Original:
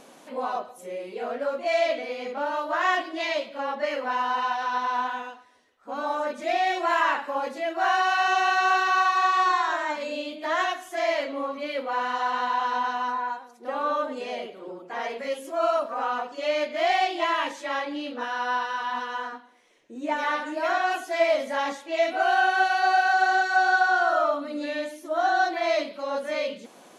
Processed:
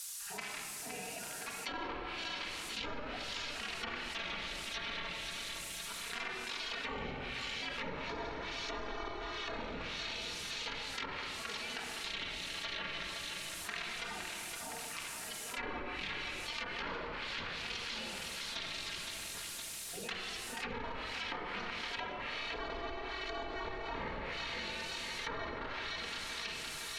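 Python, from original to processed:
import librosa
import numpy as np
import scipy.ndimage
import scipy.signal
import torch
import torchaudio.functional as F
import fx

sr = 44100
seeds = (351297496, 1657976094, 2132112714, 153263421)

p1 = fx.wiener(x, sr, points=41)
p2 = fx.spec_gate(p1, sr, threshold_db=-25, keep='weak')
p3 = fx.step_gate(p2, sr, bpm=76, pattern='.x..xx..xx', floor_db=-12.0, edge_ms=4.5)
p4 = fx.dmg_noise_colour(p3, sr, seeds[0], colour='violet', level_db=-62.0)
p5 = scipy.signal.sosfilt(scipy.signal.butter(2, 9600.0, 'lowpass', fs=sr, output='sos'), p4)
p6 = fx.high_shelf(p5, sr, hz=3000.0, db=9.5)
p7 = p6 + fx.echo_feedback(p6, sr, ms=514, feedback_pct=55, wet_db=-11.5, dry=0)
p8 = fx.room_shoebox(p7, sr, seeds[1], volume_m3=2700.0, walls='mixed', distance_m=1.7)
p9 = fx.env_lowpass_down(p8, sr, base_hz=1000.0, full_db=-37.0)
p10 = fx.env_flatten(p9, sr, amount_pct=70)
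y = p10 * librosa.db_to_amplitude(3.0)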